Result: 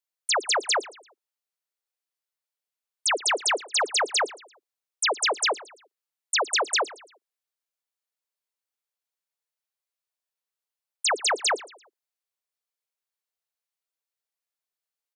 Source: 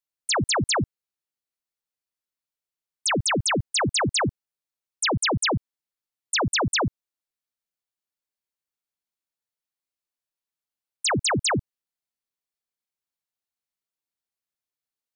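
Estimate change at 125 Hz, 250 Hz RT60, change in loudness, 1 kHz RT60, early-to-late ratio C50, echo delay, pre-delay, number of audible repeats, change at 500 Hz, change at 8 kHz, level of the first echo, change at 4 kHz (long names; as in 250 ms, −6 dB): below −40 dB, no reverb audible, −0.5 dB, no reverb audible, no reverb audible, 113 ms, no reverb audible, 2, −1.0 dB, 0.0 dB, −19.0 dB, 0.0 dB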